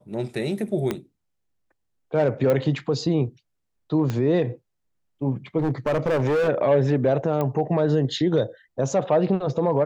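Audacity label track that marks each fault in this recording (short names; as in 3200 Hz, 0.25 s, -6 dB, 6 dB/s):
0.910000	0.910000	pop -12 dBFS
2.500000	2.500000	pop -12 dBFS
4.100000	4.100000	pop -14 dBFS
5.580000	6.490000	clipped -18.5 dBFS
7.410000	7.410000	pop -14 dBFS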